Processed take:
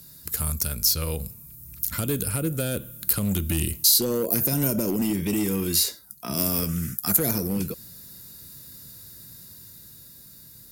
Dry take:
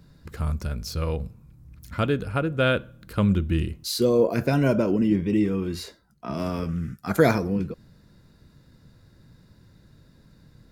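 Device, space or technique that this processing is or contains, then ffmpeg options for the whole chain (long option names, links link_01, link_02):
FM broadcast chain: -filter_complex "[0:a]highpass=45,dynaudnorm=framelen=260:gausssize=13:maxgain=5.5dB,acrossover=split=490|6000[link_01][link_02][link_03];[link_01]acompressor=threshold=-17dB:ratio=4[link_04];[link_02]acompressor=threshold=-35dB:ratio=4[link_05];[link_03]acompressor=threshold=-50dB:ratio=4[link_06];[link_04][link_05][link_06]amix=inputs=3:normalize=0,aemphasis=mode=production:type=75fm,alimiter=limit=-14.5dB:level=0:latency=1:release=91,asoftclip=type=hard:threshold=-18dB,lowpass=frequency=15000:width=0.5412,lowpass=frequency=15000:width=1.3066,aemphasis=mode=production:type=75fm,volume=-1dB"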